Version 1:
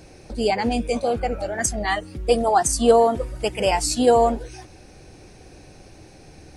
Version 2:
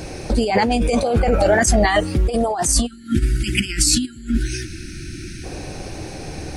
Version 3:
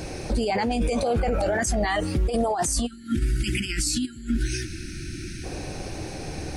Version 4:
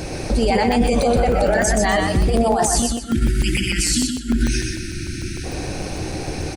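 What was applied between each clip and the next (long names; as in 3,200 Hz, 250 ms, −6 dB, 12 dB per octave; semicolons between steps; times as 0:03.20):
compressor whose output falls as the input rises −27 dBFS, ratio −1; time-frequency box erased 0:02.86–0:05.44, 370–1,300 Hz; level +9 dB
brickwall limiter −13.5 dBFS, peak gain reduction 10 dB; level −2.5 dB
on a send: repeating echo 124 ms, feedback 30%, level −4 dB; on the sum: regular buffer underruns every 0.15 s, samples 128, zero, from 0:00.72; level +5.5 dB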